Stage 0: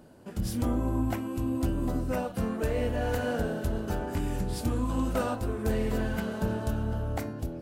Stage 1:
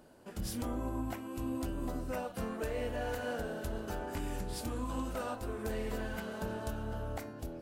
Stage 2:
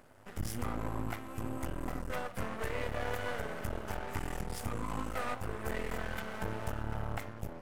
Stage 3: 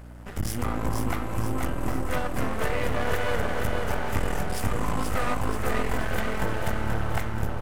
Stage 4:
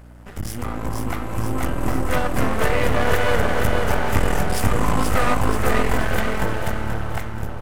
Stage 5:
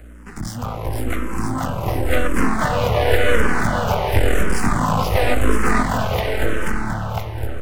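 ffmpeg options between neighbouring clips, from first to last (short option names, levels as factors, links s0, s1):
-af "equalizer=f=120:w=0.46:g=-8,alimiter=level_in=1.12:limit=0.0631:level=0:latency=1:release=332,volume=0.891,volume=0.794"
-af "equalizer=f=100:t=o:w=0.33:g=11,equalizer=f=315:t=o:w=0.33:g=-6,equalizer=f=800:t=o:w=0.33:g=3,equalizer=f=1250:t=o:w=0.33:g=7,equalizer=f=2000:t=o:w=0.33:g=9,equalizer=f=4000:t=o:w=0.33:g=-9,aeval=exprs='max(val(0),0)':c=same,volume=1.41"
-af "aeval=exprs='val(0)+0.00316*(sin(2*PI*60*n/s)+sin(2*PI*2*60*n/s)/2+sin(2*PI*3*60*n/s)/3+sin(2*PI*4*60*n/s)/4+sin(2*PI*5*60*n/s)/5)':c=same,aecho=1:1:481|962|1443|1924|2405|2886|3367:0.631|0.322|0.164|0.0837|0.0427|0.0218|0.0111,volume=2.51"
-af "dynaudnorm=f=350:g=9:m=3.16"
-filter_complex "[0:a]acrossover=split=230|560|5400[s0][s1][s2][s3];[s3]asoftclip=type=tanh:threshold=0.0237[s4];[s0][s1][s2][s4]amix=inputs=4:normalize=0,asplit=2[s5][s6];[s6]afreqshift=-0.93[s7];[s5][s7]amix=inputs=2:normalize=1,volume=1.78"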